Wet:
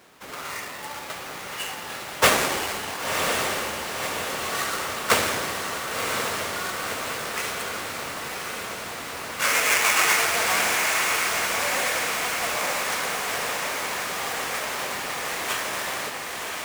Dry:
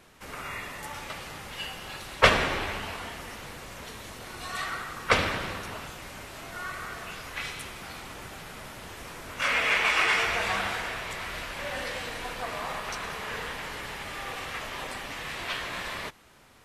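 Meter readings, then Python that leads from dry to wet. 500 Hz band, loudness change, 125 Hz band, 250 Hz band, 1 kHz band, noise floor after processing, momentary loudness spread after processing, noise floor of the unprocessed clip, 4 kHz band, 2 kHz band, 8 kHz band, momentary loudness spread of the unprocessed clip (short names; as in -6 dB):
+5.0 dB, +5.5 dB, -1.5 dB, +4.0 dB, +5.5 dB, -36 dBFS, 13 LU, -44 dBFS, +6.0 dB, +4.5 dB, +15.0 dB, 19 LU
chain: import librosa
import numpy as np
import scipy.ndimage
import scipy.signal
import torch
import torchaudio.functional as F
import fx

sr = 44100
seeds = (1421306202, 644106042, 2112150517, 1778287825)

p1 = fx.halfwave_hold(x, sr)
p2 = fx.highpass(p1, sr, hz=360.0, slope=6)
p3 = fx.dynamic_eq(p2, sr, hz=8400.0, q=0.96, threshold_db=-40.0, ratio=4.0, max_db=4)
p4 = np.clip(p3, -10.0 ** (-11.5 / 20.0), 10.0 ** (-11.5 / 20.0))
y = p4 + fx.echo_diffused(p4, sr, ms=1035, feedback_pct=67, wet_db=-3.5, dry=0)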